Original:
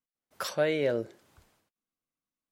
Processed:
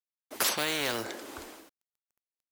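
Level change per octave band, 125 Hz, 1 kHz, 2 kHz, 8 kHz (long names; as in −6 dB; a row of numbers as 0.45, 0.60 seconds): −6.5, +4.5, +4.0, +13.0 decibels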